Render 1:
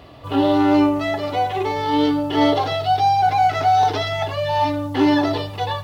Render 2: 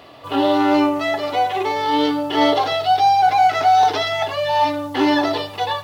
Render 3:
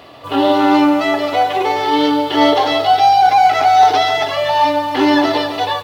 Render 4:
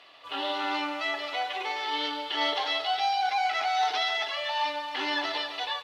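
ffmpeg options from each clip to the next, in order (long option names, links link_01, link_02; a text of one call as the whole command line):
ffmpeg -i in.wav -af "highpass=frequency=450:poles=1,volume=3.5dB" out.wav
ffmpeg -i in.wav -af "aecho=1:1:142.9|271.1:0.282|0.355,volume=3.5dB" out.wav
ffmpeg -i in.wav -af "bandpass=frequency=2900:width_type=q:width=0.81:csg=0,volume=-7.5dB" out.wav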